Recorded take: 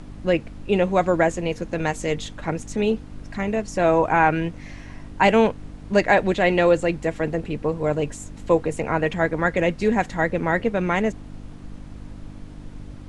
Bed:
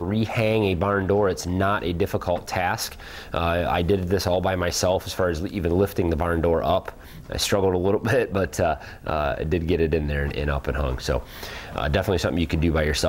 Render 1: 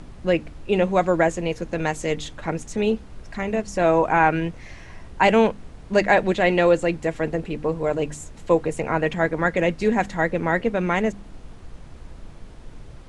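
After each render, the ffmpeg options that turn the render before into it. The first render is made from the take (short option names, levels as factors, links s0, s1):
-af "bandreject=f=50:t=h:w=4,bandreject=f=100:t=h:w=4,bandreject=f=150:t=h:w=4,bandreject=f=200:t=h:w=4,bandreject=f=250:t=h:w=4,bandreject=f=300:t=h:w=4"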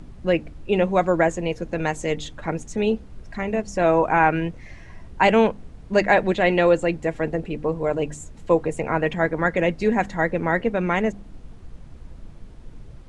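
-af "afftdn=nr=6:nf=-42"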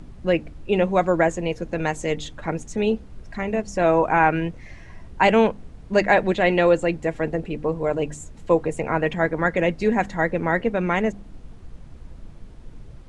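-af anull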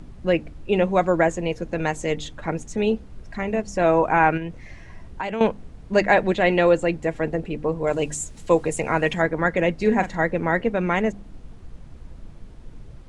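-filter_complex "[0:a]asettb=1/sr,asplit=3[s0][s1][s2];[s0]atrim=end=4.374[s3];[s1]atrim=start=4.37:end=5.41,asetpts=PTS-STARTPTS,afade=t=in:d=0.004:c=qsin,afade=t=out:st=1.036:d=0.004:c=qsin,acompressor=threshold=0.0501:ratio=4:attack=3.2:release=140:knee=1:detection=peak[s4];[s2]atrim=start=5.406[s5];[s3][s4]acrossfade=d=0.004:c1=hsin:c2=qsin[s6];[s6][s5]acrossfade=d=0.004:c1=qsin:c2=hsin,asettb=1/sr,asplit=3[s7][s8][s9];[s7]atrim=end=7.874[s10];[s8]atrim=start=7.87:end=9.22,asetpts=PTS-STARTPTS,afade=t=in:d=0.004:c=qsin,afade=t=out:st=1.346:d=0.004:c=qsin,highshelf=f=3200:g=12[s11];[s9]atrim=start=9.216[s12];[s10][s11]acrossfade=d=0.004:c1=hsin:c2=qsin[s13];[s13][s12]acrossfade=d=0.004:c1=qsin:c2=hsin,asettb=1/sr,asplit=3[s14][s15][s16];[s14]atrim=end=9.814[s17];[s15]atrim=start=9.81:end=10.24,asetpts=PTS-STARTPTS,afade=t=in:d=0.004:c=qsin,afade=t=out:st=0.426:d=0.004:c=qsin,asplit=2[s18][s19];[s19]adelay=42,volume=0.282[s20];[s18][s20]amix=inputs=2:normalize=0,atrim=end_sample=18963[s21];[s16]atrim=start=10.236[s22];[s17][s21]acrossfade=d=0.004:c1=hsin:c2=qsin[s23];[s23][s22]acrossfade=d=0.004:c1=qsin:c2=hsin"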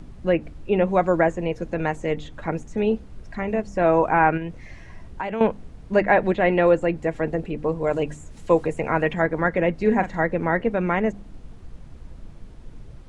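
-filter_complex "[0:a]acrossover=split=2600[s0][s1];[s1]acompressor=threshold=0.00316:ratio=4:attack=1:release=60[s2];[s0][s2]amix=inputs=2:normalize=0"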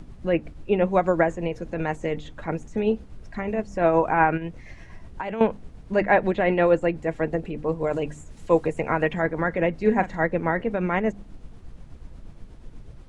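-af "tremolo=f=8.3:d=0.38"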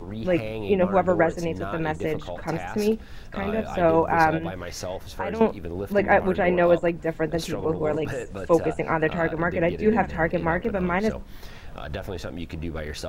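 -filter_complex "[1:a]volume=0.282[s0];[0:a][s0]amix=inputs=2:normalize=0"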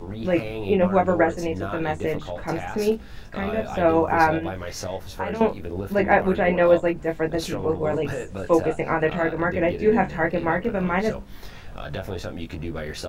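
-filter_complex "[0:a]asplit=2[s0][s1];[s1]adelay=21,volume=0.562[s2];[s0][s2]amix=inputs=2:normalize=0"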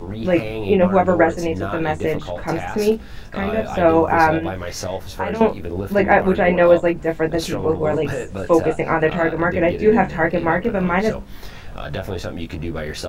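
-af "volume=1.68,alimiter=limit=0.794:level=0:latency=1"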